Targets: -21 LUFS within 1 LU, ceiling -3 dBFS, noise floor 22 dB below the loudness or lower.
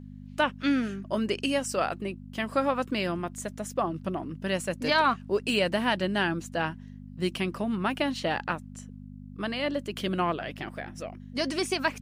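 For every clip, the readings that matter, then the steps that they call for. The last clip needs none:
hum 50 Hz; harmonics up to 250 Hz; hum level -42 dBFS; loudness -29.5 LUFS; peak -12.0 dBFS; loudness target -21.0 LUFS
-> de-hum 50 Hz, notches 5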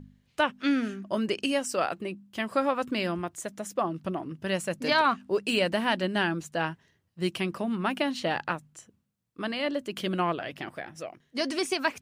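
hum none; loudness -29.5 LUFS; peak -12.0 dBFS; loudness target -21.0 LUFS
-> gain +8.5 dB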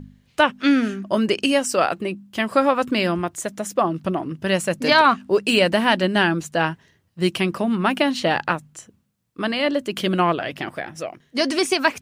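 loudness -21.0 LUFS; peak -3.5 dBFS; noise floor -62 dBFS

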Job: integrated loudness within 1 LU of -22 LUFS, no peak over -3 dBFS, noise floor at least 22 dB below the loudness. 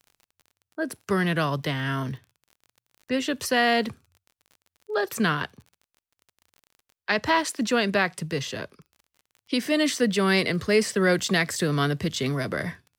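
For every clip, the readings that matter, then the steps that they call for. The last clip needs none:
ticks 31/s; loudness -25.0 LUFS; peak -8.5 dBFS; loudness target -22.0 LUFS
-> de-click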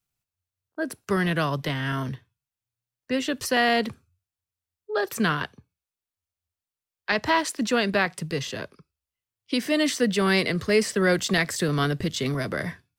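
ticks 0.077/s; loudness -25.0 LUFS; peak -8.5 dBFS; loudness target -22.0 LUFS
-> gain +3 dB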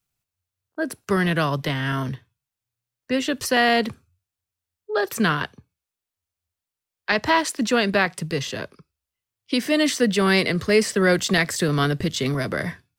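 loudness -22.0 LUFS; peak -5.5 dBFS; noise floor -88 dBFS

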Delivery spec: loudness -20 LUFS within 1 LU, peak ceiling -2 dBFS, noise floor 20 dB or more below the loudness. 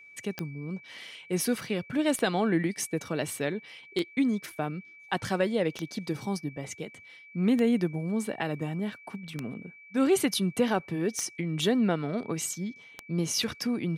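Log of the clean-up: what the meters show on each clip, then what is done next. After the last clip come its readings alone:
clicks 8; steady tone 2300 Hz; tone level -49 dBFS; loudness -30.0 LUFS; peak -13.5 dBFS; loudness target -20.0 LUFS
-> de-click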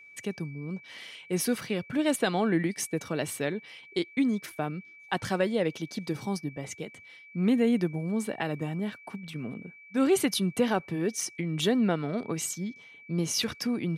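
clicks 0; steady tone 2300 Hz; tone level -49 dBFS
-> notch 2300 Hz, Q 30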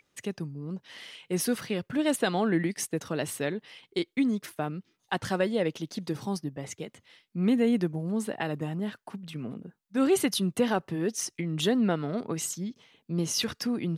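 steady tone none; loudness -30.0 LUFS; peak -13.5 dBFS; loudness target -20.0 LUFS
-> gain +10 dB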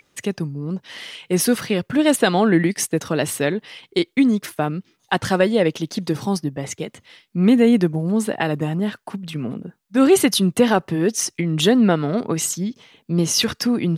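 loudness -20.0 LUFS; peak -3.5 dBFS; noise floor -66 dBFS

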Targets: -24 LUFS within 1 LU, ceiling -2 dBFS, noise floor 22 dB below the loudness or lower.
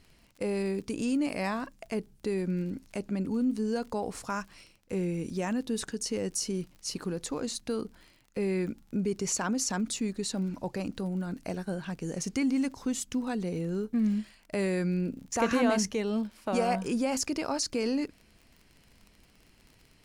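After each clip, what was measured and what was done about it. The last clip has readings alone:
ticks 42/s; loudness -31.5 LUFS; peak -13.5 dBFS; loudness target -24.0 LUFS
-> de-click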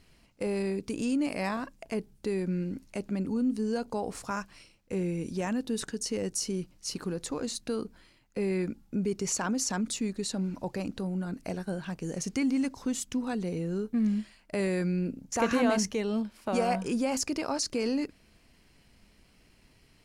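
ticks 0.20/s; loudness -31.5 LUFS; peak -13.5 dBFS; loudness target -24.0 LUFS
-> gain +7.5 dB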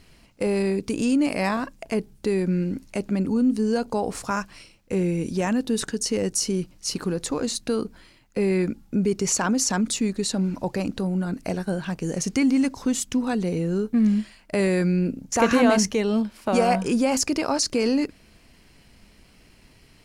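loudness -24.0 LUFS; peak -6.0 dBFS; noise floor -55 dBFS

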